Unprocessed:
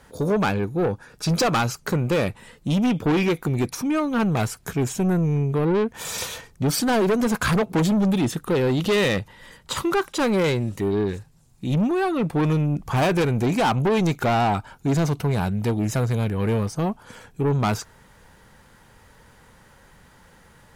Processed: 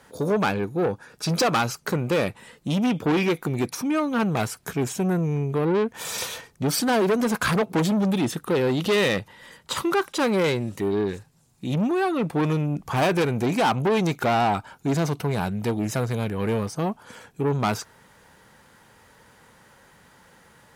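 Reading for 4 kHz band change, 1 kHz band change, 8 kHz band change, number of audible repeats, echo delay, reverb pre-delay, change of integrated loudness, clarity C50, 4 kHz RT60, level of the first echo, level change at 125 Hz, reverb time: 0.0 dB, 0.0 dB, −1.0 dB, no echo audible, no echo audible, no reverb audible, −1.5 dB, no reverb audible, no reverb audible, no echo audible, −4.0 dB, no reverb audible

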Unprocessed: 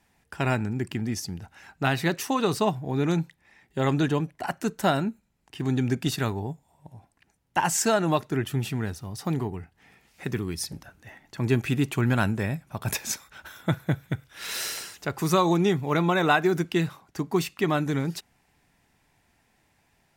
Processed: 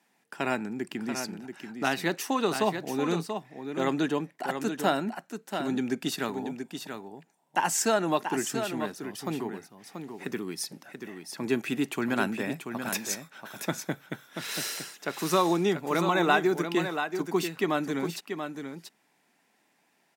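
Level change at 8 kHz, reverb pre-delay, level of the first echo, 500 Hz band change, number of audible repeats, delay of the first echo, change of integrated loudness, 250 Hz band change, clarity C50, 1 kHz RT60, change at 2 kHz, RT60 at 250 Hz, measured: −1.5 dB, no reverb audible, −7.5 dB, −1.5 dB, 1, 684 ms, −3.0 dB, −2.5 dB, no reverb audible, no reverb audible, −1.5 dB, no reverb audible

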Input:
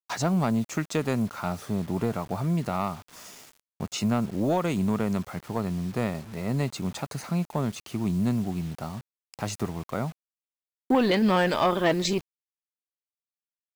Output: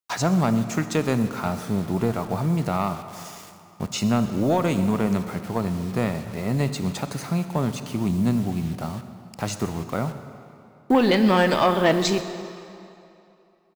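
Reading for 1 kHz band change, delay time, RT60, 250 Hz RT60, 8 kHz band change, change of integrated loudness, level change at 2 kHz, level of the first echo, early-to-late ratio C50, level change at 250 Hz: +4.0 dB, 126 ms, 2.8 s, 2.5 s, +4.0 dB, +4.0 dB, +4.0 dB, −20.5 dB, 10.0 dB, +4.0 dB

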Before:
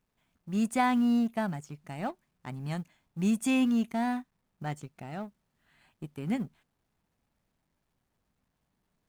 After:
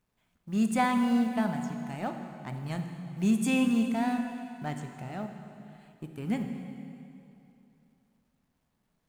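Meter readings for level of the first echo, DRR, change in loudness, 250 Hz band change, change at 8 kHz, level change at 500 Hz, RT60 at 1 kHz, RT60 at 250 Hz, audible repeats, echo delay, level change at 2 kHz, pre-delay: no echo audible, 5.0 dB, +0.5 dB, +1.0 dB, +1.0 dB, +1.5 dB, 2.8 s, 2.8 s, no echo audible, no echo audible, +1.5 dB, 7 ms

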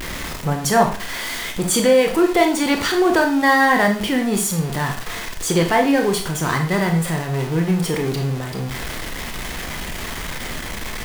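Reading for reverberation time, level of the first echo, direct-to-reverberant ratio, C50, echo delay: 0.40 s, no echo audible, 3.0 dB, 8.5 dB, no echo audible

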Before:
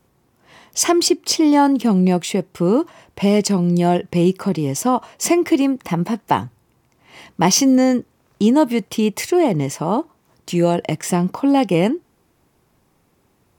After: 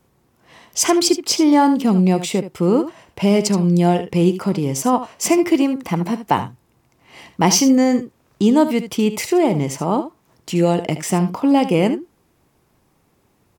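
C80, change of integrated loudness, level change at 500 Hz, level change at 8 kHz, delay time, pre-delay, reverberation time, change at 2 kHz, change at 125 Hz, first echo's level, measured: no reverb audible, +0.5 dB, 0.0 dB, +0.5 dB, 75 ms, no reverb audible, no reverb audible, 0.0 dB, +0.5 dB, −12.0 dB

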